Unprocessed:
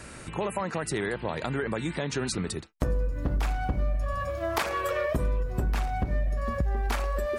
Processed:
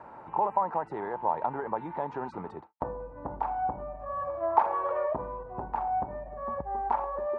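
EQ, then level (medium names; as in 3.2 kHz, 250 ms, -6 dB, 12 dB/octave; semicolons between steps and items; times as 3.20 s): high-pass 190 Hz 6 dB/octave; resonant low-pass 890 Hz, resonance Q 7.8; bass shelf 460 Hz -6.5 dB; -2.5 dB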